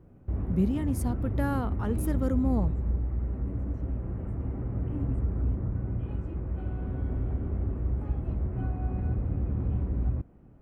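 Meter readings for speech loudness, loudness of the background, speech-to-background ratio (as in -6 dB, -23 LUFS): -31.0 LUFS, -32.0 LUFS, 1.0 dB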